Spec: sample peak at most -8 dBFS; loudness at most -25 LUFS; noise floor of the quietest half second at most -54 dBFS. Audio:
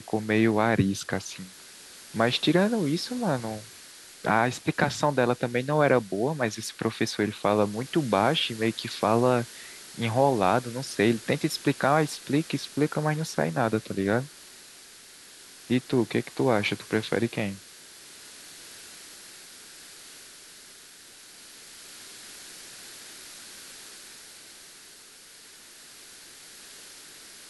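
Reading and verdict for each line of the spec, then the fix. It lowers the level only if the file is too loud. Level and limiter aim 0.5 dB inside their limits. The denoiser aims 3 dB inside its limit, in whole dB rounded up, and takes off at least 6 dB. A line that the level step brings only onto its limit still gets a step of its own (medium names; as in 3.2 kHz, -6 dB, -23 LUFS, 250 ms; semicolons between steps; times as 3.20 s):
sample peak -7.0 dBFS: fail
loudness -26.0 LUFS: pass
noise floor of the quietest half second -50 dBFS: fail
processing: noise reduction 7 dB, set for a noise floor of -50 dBFS; peak limiter -8.5 dBFS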